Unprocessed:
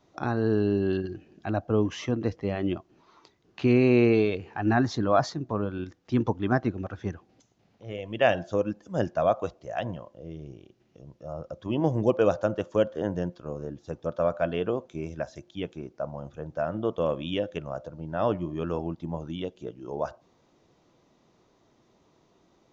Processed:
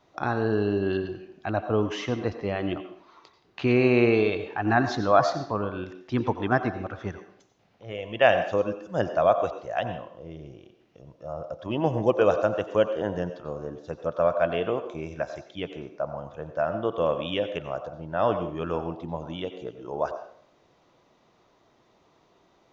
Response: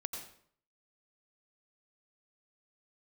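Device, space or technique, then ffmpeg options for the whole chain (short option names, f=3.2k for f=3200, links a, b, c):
filtered reverb send: -filter_complex "[0:a]asplit=2[a][b];[b]highpass=440,lowpass=4.8k[c];[1:a]atrim=start_sample=2205[d];[c][d]afir=irnorm=-1:irlink=0,volume=0.5dB[e];[a][e]amix=inputs=2:normalize=0,volume=-1dB"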